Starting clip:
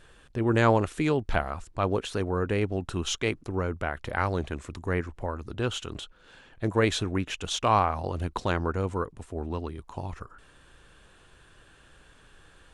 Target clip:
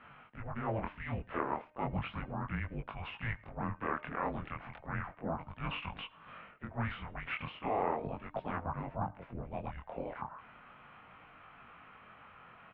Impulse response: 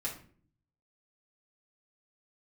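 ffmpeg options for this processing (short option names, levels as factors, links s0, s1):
-filter_complex "[0:a]asplit=2[s0][s1];[s1]asetrate=55563,aresample=44100,atempo=0.793701,volume=0.355[s2];[s0][s2]amix=inputs=2:normalize=0,deesser=0.9,equalizer=f=690:t=o:w=0.33:g=-6,areverse,acompressor=threshold=0.0224:ratio=6,areverse,bandreject=f=312.3:t=h:w=4,bandreject=f=624.6:t=h:w=4,bandreject=f=936.9:t=h:w=4,bandreject=f=1249.2:t=h:w=4,bandreject=f=1561.5:t=h:w=4,bandreject=f=1873.8:t=h:w=4,bandreject=f=2186.1:t=h:w=4,bandreject=f=2498.4:t=h:w=4,bandreject=f=2810.7:t=h:w=4,bandreject=f=3123:t=h:w=4,bandreject=f=3435.3:t=h:w=4,bandreject=f=3747.6:t=h:w=4,bandreject=f=4059.9:t=h:w=4,bandreject=f=4372.2:t=h:w=4,bandreject=f=4684.5:t=h:w=4,bandreject=f=4996.8:t=h:w=4,bandreject=f=5309.1:t=h:w=4,bandreject=f=5621.4:t=h:w=4,bandreject=f=5933.7:t=h:w=4,bandreject=f=6246:t=h:w=4,bandreject=f=6558.3:t=h:w=4,bandreject=f=6870.6:t=h:w=4,bandreject=f=7182.9:t=h:w=4,bandreject=f=7495.2:t=h:w=4,bandreject=f=7807.5:t=h:w=4,bandreject=f=8119.8:t=h:w=4,bandreject=f=8432.1:t=h:w=4,bandreject=f=8744.4:t=h:w=4,bandreject=f=9056.7:t=h:w=4,bandreject=f=9369:t=h:w=4,bandreject=f=9681.3:t=h:w=4,bandreject=f=9993.6:t=h:w=4,flanger=delay=19:depth=6.3:speed=0.35,asplit=2[s3][s4];[s4]adelay=105,volume=0.0562,highshelf=f=4000:g=-2.36[s5];[s3][s5]amix=inputs=2:normalize=0,highpass=f=460:t=q:w=0.5412,highpass=f=460:t=q:w=1.307,lowpass=f=2900:t=q:w=0.5176,lowpass=f=2900:t=q:w=0.7071,lowpass=f=2900:t=q:w=1.932,afreqshift=-330,volume=2.24"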